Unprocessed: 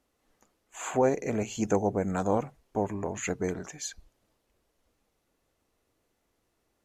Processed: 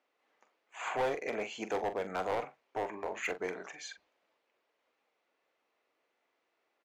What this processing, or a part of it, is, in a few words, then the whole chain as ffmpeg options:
megaphone: -filter_complex "[0:a]highpass=520,lowpass=3400,equalizer=f=2300:t=o:w=0.47:g=4,asoftclip=type=hard:threshold=0.0398,asplit=2[s0][s1];[s1]adelay=43,volume=0.282[s2];[s0][s2]amix=inputs=2:normalize=0"

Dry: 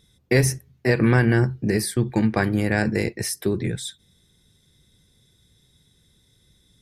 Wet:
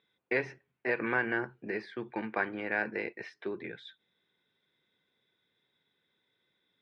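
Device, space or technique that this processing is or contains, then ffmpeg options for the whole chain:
phone earpiece: -af "highpass=390,equalizer=f=960:t=q:w=4:g=4,equalizer=f=1500:t=q:w=4:g=5,equalizer=f=2400:t=q:w=4:g=4,lowpass=f=3200:w=0.5412,lowpass=f=3200:w=1.3066,equalizer=f=8400:t=o:w=0.79:g=-3.5,volume=0.355"

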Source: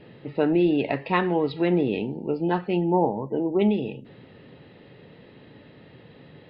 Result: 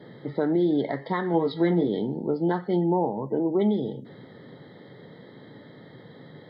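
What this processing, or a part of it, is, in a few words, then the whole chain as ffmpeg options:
PA system with an anti-feedback notch: -filter_complex "[0:a]highpass=f=110:w=0.5412,highpass=f=110:w=1.3066,asuperstop=centerf=2600:order=12:qfactor=2.9,alimiter=limit=0.133:level=0:latency=1:release=350,asettb=1/sr,asplit=3[s0][s1][s2];[s0]atrim=end=1.324[s3];[s1]atrim=start=1.32:end=1.88,asetpts=PTS-STARTPTS,afade=t=in:d=0.004:c=qsin,afade=t=out:st=0.556:d=0.004:c=qsin,asplit=2[s4][s5];[s5]adelay=18,volume=0.531[s6];[s4][s6]amix=inputs=2:normalize=0,atrim=end_sample=24696[s7];[s2]atrim=start=1.876[s8];[s3][s7]acrossfade=d=0.004:c1=hsin:c2=qsin[s9];[s9][s8]acrossfade=d=0.004:c1=qsin:c2=hsin,volume=1.33"

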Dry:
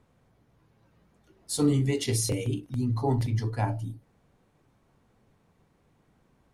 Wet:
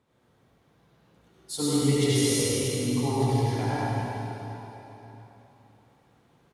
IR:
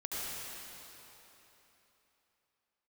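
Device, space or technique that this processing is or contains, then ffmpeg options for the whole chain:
PA in a hall: -filter_complex "[0:a]highpass=f=140:p=1,equalizer=f=3600:t=o:w=0.59:g=4.5,aecho=1:1:101:0.473[s0];[1:a]atrim=start_sample=2205[s1];[s0][s1]afir=irnorm=-1:irlink=0"

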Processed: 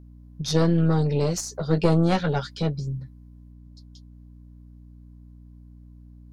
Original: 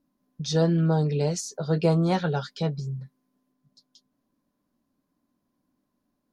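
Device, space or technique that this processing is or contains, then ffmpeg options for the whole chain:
valve amplifier with mains hum: -af "aeval=exprs='(tanh(6.31*val(0)+0.8)-tanh(0.8))/6.31':c=same,aeval=exprs='val(0)+0.00251*(sin(2*PI*60*n/s)+sin(2*PI*2*60*n/s)/2+sin(2*PI*3*60*n/s)/3+sin(2*PI*4*60*n/s)/4+sin(2*PI*5*60*n/s)/5)':c=same,volume=2.24"

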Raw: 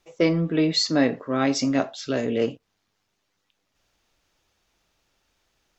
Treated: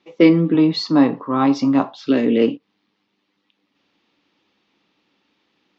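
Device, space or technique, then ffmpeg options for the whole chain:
kitchen radio: -filter_complex "[0:a]highpass=200,equalizer=f=200:t=q:w=4:g=8,equalizer=f=290:t=q:w=4:g=9,equalizer=f=650:t=q:w=4:g=-8,equalizer=f=1500:t=q:w=4:g=-6,lowpass=f=4200:w=0.5412,lowpass=f=4200:w=1.3066,asettb=1/sr,asplit=3[s0][s1][s2];[s0]atrim=end=0.544[s3];[s1]atrim=start=0.54:end=2.07,asetpts=PTS-STARTPTS,afade=t=in:d=0.004:c=qsin,afade=t=out:st=1.526:d=0.004:c=qsin,equalizer=f=125:t=o:w=1:g=6,equalizer=f=250:t=o:w=1:g=-7,equalizer=f=500:t=o:w=1:g=-5,equalizer=f=1000:t=o:w=1:g=11,equalizer=f=2000:t=o:w=1:g=-10,equalizer=f=4000:t=o:w=1:g=-4[s4];[s2]atrim=start=2.066[s5];[s3][s4]acrossfade=d=0.004:c1=hsin:c2=qsin[s6];[s6][s5]acrossfade=d=0.004:c1=qsin:c2=hsin,volume=2.11"

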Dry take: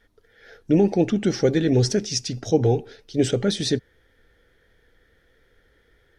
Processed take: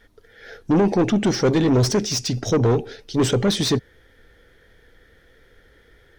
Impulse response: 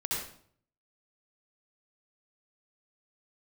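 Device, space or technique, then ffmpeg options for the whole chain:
saturation between pre-emphasis and de-emphasis: -af "highshelf=f=3900:g=9.5,asoftclip=type=tanh:threshold=0.1,highshelf=f=3900:g=-9.5,volume=2.24"

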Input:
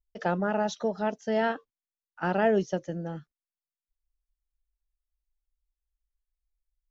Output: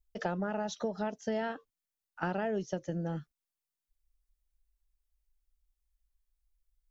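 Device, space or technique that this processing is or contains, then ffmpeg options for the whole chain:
ASMR close-microphone chain: -af "lowshelf=f=130:g=6,acompressor=threshold=0.0316:ratio=6,highshelf=f=6200:g=5"

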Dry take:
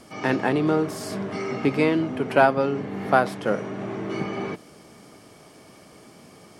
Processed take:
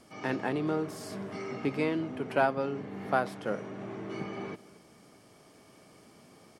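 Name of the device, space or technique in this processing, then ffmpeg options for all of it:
ducked delay: -filter_complex "[0:a]asplit=3[s0][s1][s2];[s1]adelay=225,volume=0.631[s3];[s2]apad=whole_len=300824[s4];[s3][s4]sidechaincompress=threshold=0.00708:ratio=8:attack=16:release=1020[s5];[s0][s5]amix=inputs=2:normalize=0,volume=0.355"

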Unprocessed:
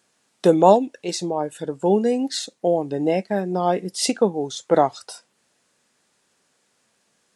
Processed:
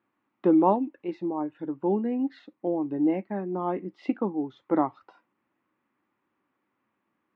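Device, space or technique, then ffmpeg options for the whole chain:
bass cabinet: -af "highpass=71,equalizer=f=160:t=q:w=4:g=-6,equalizer=f=310:t=q:w=4:g=9,equalizer=f=460:t=q:w=4:g=-9,equalizer=f=660:t=q:w=4:g=-8,equalizer=f=1100:t=q:w=4:g=4,equalizer=f=1600:t=q:w=4:g=-7,lowpass=f=2100:w=0.5412,lowpass=f=2100:w=1.3066,volume=0.531"

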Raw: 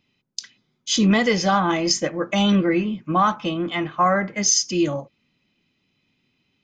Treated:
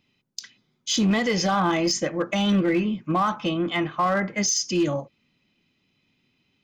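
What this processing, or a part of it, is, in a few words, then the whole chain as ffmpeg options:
limiter into clipper: -af "alimiter=limit=0.2:level=0:latency=1:release=63,asoftclip=type=hard:threshold=0.158"

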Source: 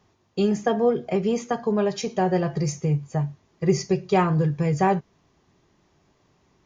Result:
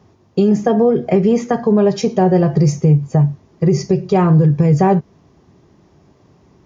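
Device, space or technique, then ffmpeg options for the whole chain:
mastering chain: -filter_complex "[0:a]highpass=58,equalizer=f=5300:t=o:w=0.4:g=3.5,acompressor=threshold=0.0708:ratio=2,tiltshelf=f=930:g=6,alimiter=level_in=4.47:limit=0.891:release=50:level=0:latency=1,asettb=1/sr,asplit=3[s0][s1][s2];[s0]atrim=end=0.934[s3];[s1]atrim=start=0.93:end=1.73,asetpts=PTS-STARTPTS,afade=t=in:d=0.004:c=qsin,afade=t=out:st=0.796:d=0.004:c=qsin,equalizer=f=1900:t=o:w=0.44:g=6.5[s4];[s2]atrim=start=1.726[s5];[s3][s4]acrossfade=d=0.004:c1=hsin:c2=qsin[s6];[s6][s5]acrossfade=d=0.004:c1=qsin:c2=hsin,volume=0.631"

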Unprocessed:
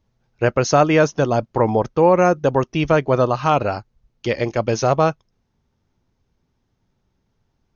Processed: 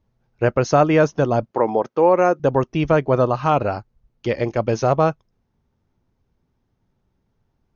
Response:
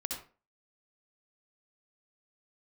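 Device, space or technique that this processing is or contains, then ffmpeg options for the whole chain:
behind a face mask: -filter_complex "[0:a]highshelf=f=2500:g=-8,asettb=1/sr,asplit=3[s0][s1][s2];[s0]atrim=end=1.514[s3];[s1]atrim=start=1.51:end=2.4,asetpts=PTS-STARTPTS,afade=t=in:d=0.004:c=qsin,afade=t=out:st=0.886:d=0.004:c=qsin,highpass=280[s4];[s2]atrim=start=2.396[s5];[s3][s4]acrossfade=d=0.004:c1=hsin:c2=qsin[s6];[s6][s5]acrossfade=d=0.004:c1=qsin:c2=hsin"

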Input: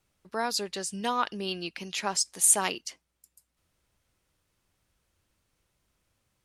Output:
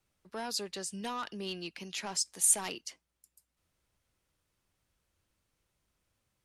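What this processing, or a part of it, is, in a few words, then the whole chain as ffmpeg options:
one-band saturation: -filter_complex "[0:a]acrossover=split=250|4000[s0][s1][s2];[s1]asoftclip=type=tanh:threshold=0.0376[s3];[s0][s3][s2]amix=inputs=3:normalize=0,volume=0.596"

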